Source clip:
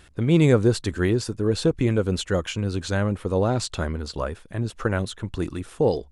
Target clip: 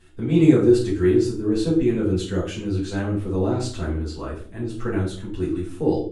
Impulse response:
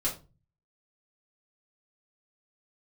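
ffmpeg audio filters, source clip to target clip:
-filter_complex "[0:a]equalizer=f=320:t=o:w=0.42:g=11.5[a];[1:a]atrim=start_sample=2205,asetrate=26901,aresample=44100[b];[a][b]afir=irnorm=-1:irlink=0,volume=-13.5dB"

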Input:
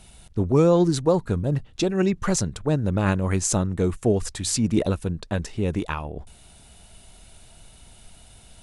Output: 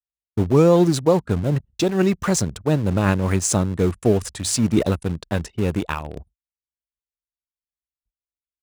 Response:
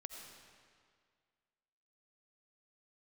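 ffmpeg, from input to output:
-filter_complex "[0:a]asplit=2[a][b];[b]aeval=exprs='val(0)*gte(abs(val(0)),0.0631)':c=same,volume=-7dB[c];[a][c]amix=inputs=2:normalize=0,agate=range=-45dB:threshold=-39dB:ratio=16:detection=peak,highpass=f=48:w=0.5412,highpass=f=48:w=1.3066,anlmdn=0.158"

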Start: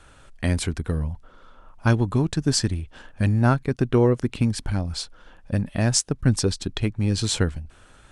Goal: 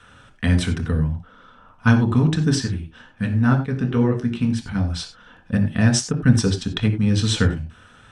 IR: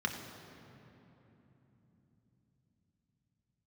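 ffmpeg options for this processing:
-filter_complex "[0:a]asettb=1/sr,asplit=3[a][b][c];[a]atrim=end=2.554[d];[b]atrim=start=2.55:end=4.75,asetpts=PTS-STARTPTS,afade=t=in:d=0.004:c=qsin,afade=t=out:st=2.196:d=0.004:c=qsin,flanger=delay=7.4:depth=9.9:regen=50:speed=2:shape=sinusoidal[e];[c]atrim=start=4.746[f];[d][e]acrossfade=d=0.004:c1=hsin:c2=qsin[g];[g][f]acrossfade=d=0.004:c1=qsin:c2=hsin[h];[1:a]atrim=start_sample=2205,afade=t=out:st=0.15:d=0.01,atrim=end_sample=7056[i];[h][i]afir=irnorm=-1:irlink=0,volume=-1dB"

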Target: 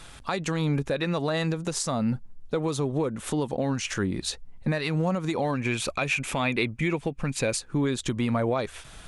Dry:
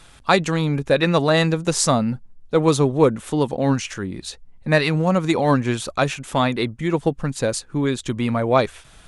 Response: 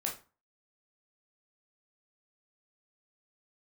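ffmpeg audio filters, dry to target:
-filter_complex "[0:a]acompressor=threshold=-19dB:ratio=4,alimiter=limit=-18.5dB:level=0:latency=1:release=266,asettb=1/sr,asplit=3[a][b][c];[a]atrim=end=5.534[d];[b]atrim=start=5.53:end=7.57,asetpts=PTS-STARTPTS,afade=t=in:d=0.004:c=qsin,afade=t=out:st=2.036:d=0.004:c=qsin,equalizer=f=2.4k:t=o:w=0.32:g=12.5[e];[c]atrim=start=7.566[f];[d][e]acrossfade=d=0.004:c1=hsin:c2=qsin[g];[g][f]acrossfade=d=0.004:c1=qsin:c2=hsin,volume=2dB"

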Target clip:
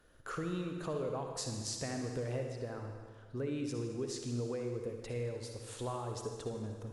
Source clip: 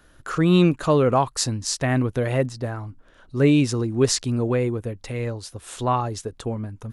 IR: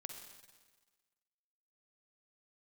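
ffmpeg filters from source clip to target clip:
-filter_complex "[0:a]equalizer=f=470:t=o:w=0.54:g=7,acompressor=threshold=-25dB:ratio=6[a];[1:a]atrim=start_sample=2205,asetrate=37044,aresample=44100[b];[a][b]afir=irnorm=-1:irlink=0,volume=-7dB"

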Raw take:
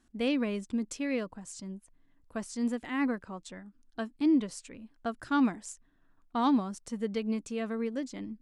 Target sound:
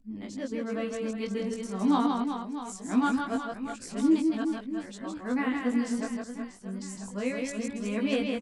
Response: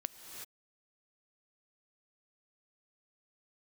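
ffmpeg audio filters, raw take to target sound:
-af "areverse,aecho=1:1:160|368|638.4|989.9|1447:0.631|0.398|0.251|0.158|0.1,flanger=delay=18.5:depth=2.4:speed=0.24,volume=3.5dB"

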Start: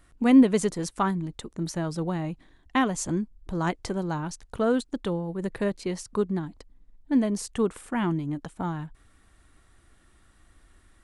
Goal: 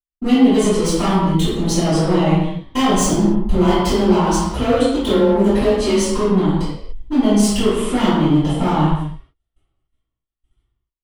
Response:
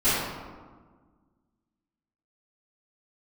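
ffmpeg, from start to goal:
-filter_complex "[0:a]dynaudnorm=f=140:g=7:m=9dB,agate=range=-56dB:threshold=-41dB:ratio=16:detection=peak,acompressor=threshold=-20dB:ratio=6,equalizer=f=160:t=o:w=0.33:g=-6,equalizer=f=250:t=o:w=0.33:g=-5,equalizer=f=1.6k:t=o:w=0.33:g=-10,equalizer=f=3.15k:t=o:w=0.33:g=11,asoftclip=type=hard:threshold=-24.5dB,asettb=1/sr,asplit=3[a][b][c];[a]atrim=end=3.544[d];[b]atrim=start=3.54:end=6.02,asetpts=PTS-STARTPTS,afade=t=in:d=0.004:c=qsin,afade=t=out:st=2.476:d=0.004:c=qsin,afreqshift=20[e];[c]atrim=start=6.016[f];[d][e]acrossfade=d=0.004:c1=hsin:c2=qsin[g];[g][f]acrossfade=d=0.004:c1=qsin:c2=hsin[h];[1:a]atrim=start_sample=2205,afade=t=out:st=0.36:d=0.01,atrim=end_sample=16317[i];[h][i]afir=irnorm=-1:irlink=0,volume=-4.5dB"

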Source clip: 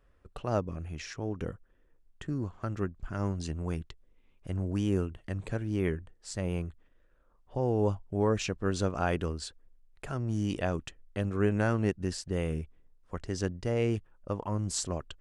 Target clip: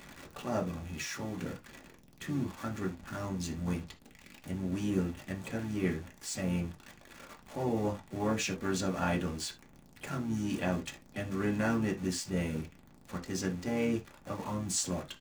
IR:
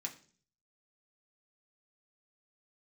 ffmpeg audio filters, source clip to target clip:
-filter_complex "[0:a]aeval=exprs='val(0)+0.5*0.0119*sgn(val(0))':c=same[a];[1:a]atrim=start_sample=2205,afade=t=out:st=0.13:d=0.01,atrim=end_sample=6174[b];[a][b]afir=irnorm=-1:irlink=0,asplit=3[c][d][e];[d]asetrate=29433,aresample=44100,atempo=1.49831,volume=-16dB[f];[e]asetrate=55563,aresample=44100,atempo=0.793701,volume=-14dB[g];[c][f][g]amix=inputs=3:normalize=0"

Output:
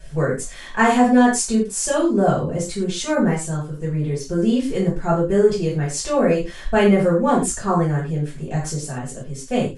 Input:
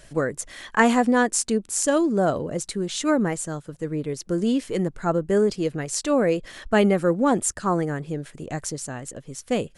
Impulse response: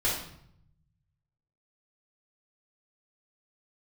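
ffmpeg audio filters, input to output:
-filter_complex "[1:a]atrim=start_sample=2205,afade=t=out:st=0.25:d=0.01,atrim=end_sample=11466,asetrate=66150,aresample=44100[a];[0:a][a]afir=irnorm=-1:irlink=0,volume=-3.5dB"

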